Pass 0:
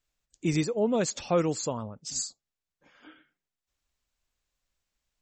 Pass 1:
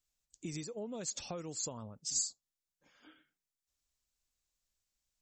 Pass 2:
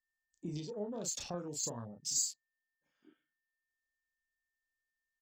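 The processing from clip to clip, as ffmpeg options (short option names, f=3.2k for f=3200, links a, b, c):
-af "highshelf=f=6.5k:g=-6,acompressor=threshold=-31dB:ratio=6,bass=f=250:g=2,treble=f=4k:g=14,volume=-9dB"
-filter_complex "[0:a]aeval=exprs='val(0)+0.0002*sin(2*PI*1800*n/s)':c=same,asplit=2[a][b];[b]adelay=34,volume=-4.5dB[c];[a][c]amix=inputs=2:normalize=0,afwtdn=0.00282"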